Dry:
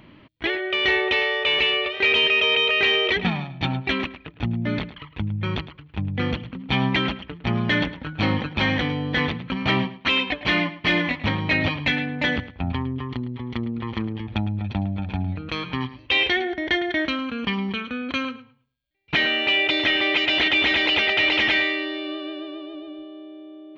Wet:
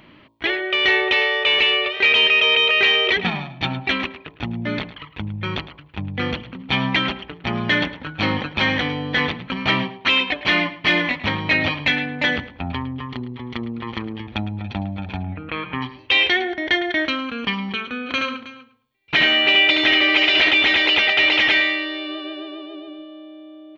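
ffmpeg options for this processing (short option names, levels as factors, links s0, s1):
-filter_complex "[0:a]asettb=1/sr,asplit=3[s0][s1][s2];[s0]atrim=end=15.234[s3];[s1]atrim=start=15.23:end=15.82,asetpts=PTS-STARTPTS,afade=t=in:d=0.004:c=qsin,afade=t=out:st=0.586:d=0.004:c=qsin,lowpass=f=2700:w=0.5412,lowpass=f=2700:w=1.3066[s4];[s2]atrim=start=15.816[s5];[s3][s4]acrossfade=d=0.004:c1=hsin:c2=qsin[s6];[s6][s5]acrossfade=d=0.004:c1=qsin:c2=hsin,asplit=3[s7][s8][s9];[s7]afade=t=out:st=18.05:d=0.02[s10];[s8]aecho=1:1:74|318:0.631|0.158,afade=t=in:st=18.05:d=0.02,afade=t=out:st=20.5:d=0.02[s11];[s9]afade=t=in:st=20.5:d=0.02[s12];[s10][s11][s12]amix=inputs=3:normalize=0,lowshelf=f=300:g=-7,bandreject=f=55.81:t=h:w=4,bandreject=f=111.62:t=h:w=4,bandreject=f=167.43:t=h:w=4,bandreject=f=223.24:t=h:w=4,bandreject=f=279.05:t=h:w=4,bandreject=f=334.86:t=h:w=4,bandreject=f=390.67:t=h:w=4,bandreject=f=446.48:t=h:w=4,bandreject=f=502.29:t=h:w=4,bandreject=f=558.1:t=h:w=4,bandreject=f=613.91:t=h:w=4,bandreject=f=669.72:t=h:w=4,bandreject=f=725.53:t=h:w=4,bandreject=f=781.34:t=h:w=4,bandreject=f=837.15:t=h:w=4,bandreject=f=892.96:t=h:w=4,bandreject=f=948.77:t=h:w=4,bandreject=f=1004.58:t=h:w=4,bandreject=f=1060.39:t=h:w=4,bandreject=f=1116.2:t=h:w=4,volume=1.58"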